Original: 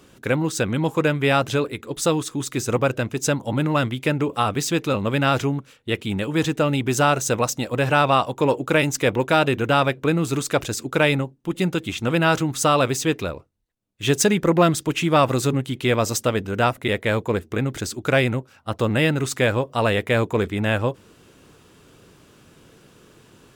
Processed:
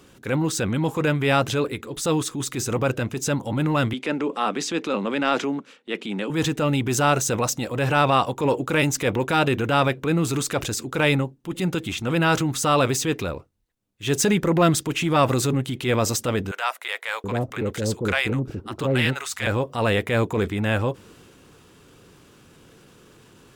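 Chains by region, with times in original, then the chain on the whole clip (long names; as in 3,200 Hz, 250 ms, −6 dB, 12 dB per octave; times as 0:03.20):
0:03.93–0:06.30: floating-point word with a short mantissa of 6 bits + Butterworth high-pass 190 Hz + high-frequency loss of the air 67 metres
0:16.51–0:19.47: multiband delay without the direct sound highs, lows 730 ms, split 690 Hz + highs frequency-modulated by the lows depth 0.12 ms
whole clip: notch filter 630 Hz, Q 15; transient designer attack −6 dB, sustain +3 dB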